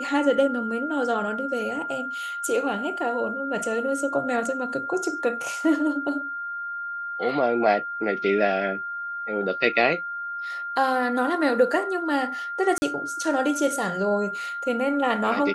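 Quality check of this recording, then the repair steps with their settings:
tone 1400 Hz -29 dBFS
12.78–12.82 gap 40 ms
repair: notch 1400 Hz, Q 30; interpolate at 12.78, 40 ms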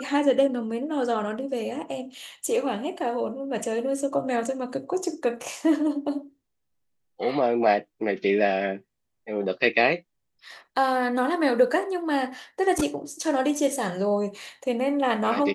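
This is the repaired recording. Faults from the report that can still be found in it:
none

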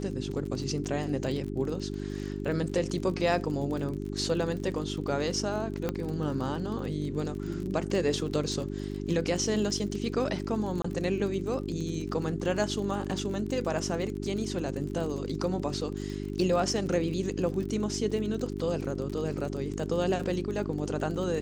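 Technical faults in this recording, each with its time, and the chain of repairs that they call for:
crackle 35/s -35 dBFS
hum 50 Hz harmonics 8 -35 dBFS
5.89 pop -16 dBFS
10.82–10.84 gap 24 ms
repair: de-click; de-hum 50 Hz, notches 8; interpolate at 10.82, 24 ms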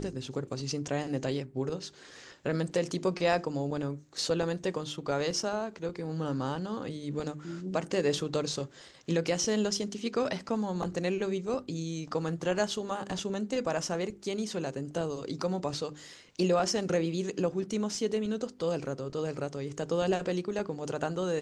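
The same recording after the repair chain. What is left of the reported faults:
none

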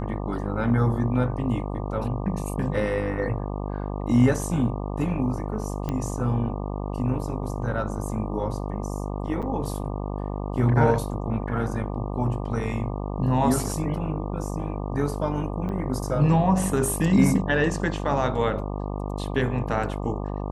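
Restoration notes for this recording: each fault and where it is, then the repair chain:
buzz 50 Hz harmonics 24 -30 dBFS
5.89 pop -16 dBFS
9.42–9.43 gap 6.7 ms
15.69 gap 4.3 ms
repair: de-click; de-hum 50 Hz, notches 24; interpolate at 9.42, 6.7 ms; interpolate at 15.69, 4.3 ms

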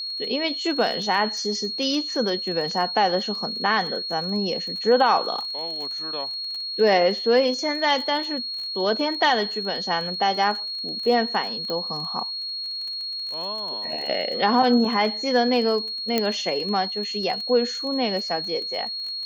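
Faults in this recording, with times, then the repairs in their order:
crackle 26/s -31 dBFS
tone 4300 Hz -28 dBFS
11.7 pop -16 dBFS
16.18 pop -7 dBFS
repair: de-click; notch 4300 Hz, Q 30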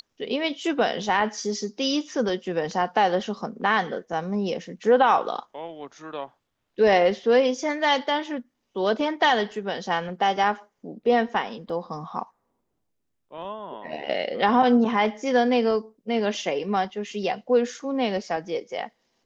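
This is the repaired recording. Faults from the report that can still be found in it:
11.7 pop

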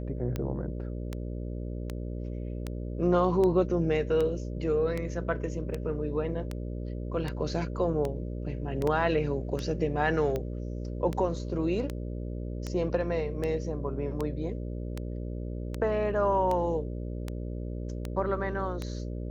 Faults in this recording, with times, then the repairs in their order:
buzz 60 Hz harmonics 10 -35 dBFS
tick 78 rpm -19 dBFS
8.87 gap 3.8 ms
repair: de-click; de-hum 60 Hz, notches 10; interpolate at 8.87, 3.8 ms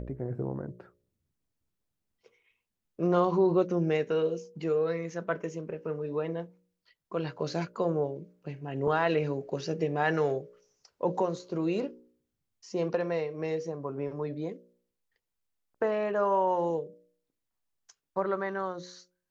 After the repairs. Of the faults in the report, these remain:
none

